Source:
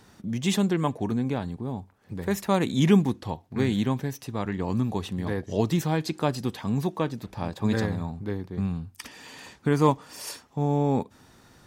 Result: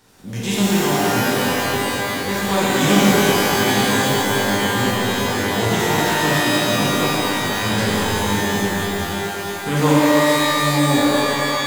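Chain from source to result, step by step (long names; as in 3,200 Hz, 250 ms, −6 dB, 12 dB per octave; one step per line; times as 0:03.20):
compressing power law on the bin magnitudes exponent 0.7
reverb with rising layers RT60 3 s, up +12 semitones, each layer −2 dB, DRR −8 dB
level −3.5 dB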